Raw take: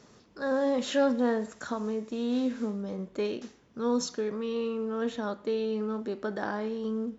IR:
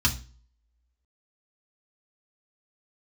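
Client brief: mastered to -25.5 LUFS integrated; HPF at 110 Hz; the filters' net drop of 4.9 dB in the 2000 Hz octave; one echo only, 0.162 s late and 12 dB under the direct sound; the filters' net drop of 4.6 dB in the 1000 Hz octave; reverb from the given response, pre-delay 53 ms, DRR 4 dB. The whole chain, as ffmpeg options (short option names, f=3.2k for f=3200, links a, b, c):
-filter_complex "[0:a]highpass=110,equalizer=f=1k:t=o:g=-5,equalizer=f=2k:t=o:g=-4.5,aecho=1:1:162:0.251,asplit=2[a][b];[1:a]atrim=start_sample=2205,adelay=53[c];[b][c]afir=irnorm=-1:irlink=0,volume=-16dB[d];[a][d]amix=inputs=2:normalize=0,volume=3dB"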